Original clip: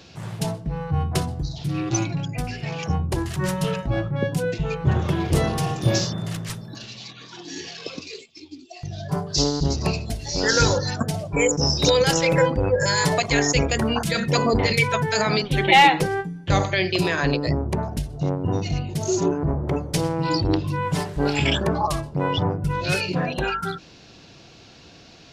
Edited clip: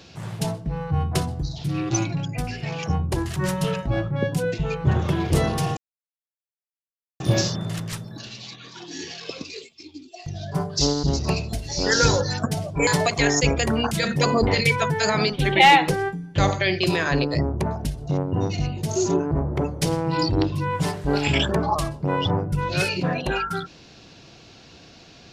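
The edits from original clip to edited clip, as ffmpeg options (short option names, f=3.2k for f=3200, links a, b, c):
-filter_complex "[0:a]asplit=3[a][b][c];[a]atrim=end=5.77,asetpts=PTS-STARTPTS,afade=t=out:st=5.766:d=0.004:c=hsin,apad=pad_dur=1.43[d];[b]atrim=start=5.77:end=11.442,asetpts=PTS-STARTPTS,afade=t=in:d=0.004:c=hsin[e];[c]atrim=start=12.988[f];[d][e]concat=n=2:v=0:a=1[g];[g][f]acrossfade=d=0.004:c1=hsin:c2=hsin"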